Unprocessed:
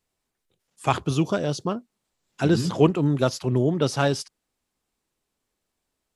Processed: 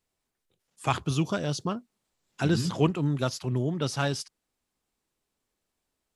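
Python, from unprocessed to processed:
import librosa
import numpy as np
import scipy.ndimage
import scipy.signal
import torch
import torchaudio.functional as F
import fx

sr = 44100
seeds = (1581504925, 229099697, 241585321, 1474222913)

y = fx.dynamic_eq(x, sr, hz=460.0, q=0.7, threshold_db=-34.0, ratio=4.0, max_db=-6)
y = fx.rider(y, sr, range_db=10, speed_s=2.0)
y = y * librosa.db_to_amplitude(-2.5)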